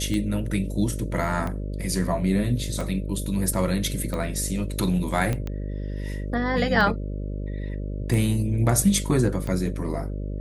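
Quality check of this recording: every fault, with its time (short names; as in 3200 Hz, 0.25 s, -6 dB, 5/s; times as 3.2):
buzz 50 Hz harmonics 12 -30 dBFS
tick 45 rpm -18 dBFS
5.33 pop -14 dBFS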